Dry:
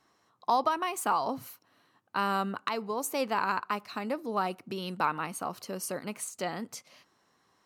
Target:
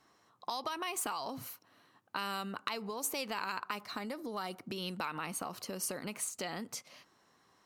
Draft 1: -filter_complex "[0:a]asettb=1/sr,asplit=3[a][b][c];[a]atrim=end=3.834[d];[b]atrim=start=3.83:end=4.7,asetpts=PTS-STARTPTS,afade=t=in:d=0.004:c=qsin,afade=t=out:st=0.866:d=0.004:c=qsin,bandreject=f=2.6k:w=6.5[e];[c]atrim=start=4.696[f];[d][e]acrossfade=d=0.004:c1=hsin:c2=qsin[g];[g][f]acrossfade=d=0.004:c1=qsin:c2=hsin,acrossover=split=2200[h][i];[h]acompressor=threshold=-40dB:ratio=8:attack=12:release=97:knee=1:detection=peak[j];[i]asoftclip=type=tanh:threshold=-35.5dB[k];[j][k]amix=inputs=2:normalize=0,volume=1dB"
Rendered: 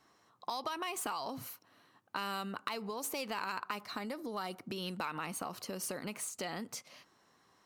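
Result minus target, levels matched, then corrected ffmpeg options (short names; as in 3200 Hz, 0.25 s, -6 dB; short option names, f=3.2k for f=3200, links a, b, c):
soft clip: distortion +12 dB
-filter_complex "[0:a]asettb=1/sr,asplit=3[a][b][c];[a]atrim=end=3.834[d];[b]atrim=start=3.83:end=4.7,asetpts=PTS-STARTPTS,afade=t=in:d=0.004:c=qsin,afade=t=out:st=0.866:d=0.004:c=qsin,bandreject=f=2.6k:w=6.5[e];[c]atrim=start=4.696[f];[d][e]acrossfade=d=0.004:c1=hsin:c2=qsin[g];[g][f]acrossfade=d=0.004:c1=qsin:c2=hsin,acrossover=split=2200[h][i];[h]acompressor=threshold=-40dB:ratio=8:attack=12:release=97:knee=1:detection=peak[j];[i]asoftclip=type=tanh:threshold=-25.5dB[k];[j][k]amix=inputs=2:normalize=0,volume=1dB"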